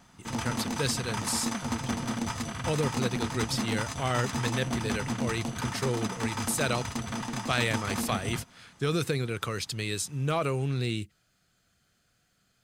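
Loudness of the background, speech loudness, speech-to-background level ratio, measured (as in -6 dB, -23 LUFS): -33.5 LUFS, -31.5 LUFS, 2.0 dB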